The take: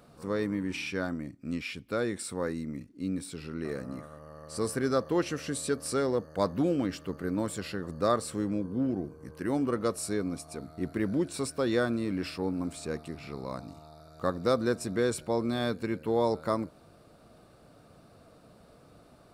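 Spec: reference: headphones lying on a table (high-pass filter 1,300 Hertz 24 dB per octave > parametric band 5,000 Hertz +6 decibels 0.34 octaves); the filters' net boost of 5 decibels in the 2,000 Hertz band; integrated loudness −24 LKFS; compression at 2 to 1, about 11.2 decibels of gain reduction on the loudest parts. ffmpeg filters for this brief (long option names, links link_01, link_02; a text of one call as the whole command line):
ffmpeg -i in.wav -af "equalizer=frequency=2000:width_type=o:gain=7.5,acompressor=threshold=-42dB:ratio=2,highpass=frequency=1300:width=0.5412,highpass=frequency=1300:width=1.3066,equalizer=frequency=5000:width_type=o:width=0.34:gain=6,volume=21.5dB" out.wav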